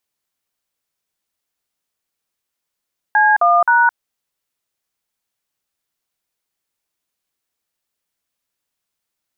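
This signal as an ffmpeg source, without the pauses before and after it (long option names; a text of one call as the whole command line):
ffmpeg -f lavfi -i "aevalsrc='0.251*clip(min(mod(t,0.263),0.215-mod(t,0.263))/0.002,0,1)*(eq(floor(t/0.263),0)*(sin(2*PI*852*mod(t,0.263))+sin(2*PI*1633*mod(t,0.263)))+eq(floor(t/0.263),1)*(sin(2*PI*697*mod(t,0.263))+sin(2*PI*1209*mod(t,0.263)))+eq(floor(t/0.263),2)*(sin(2*PI*941*mod(t,0.263))+sin(2*PI*1477*mod(t,0.263))))':duration=0.789:sample_rate=44100" out.wav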